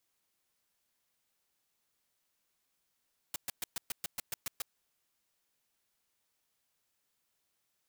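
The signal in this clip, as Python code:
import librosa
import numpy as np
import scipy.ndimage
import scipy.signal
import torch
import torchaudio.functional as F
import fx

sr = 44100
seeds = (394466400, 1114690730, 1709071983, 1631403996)

y = fx.noise_burst(sr, seeds[0], colour='white', on_s=0.02, off_s=0.12, bursts=10, level_db=-36.0)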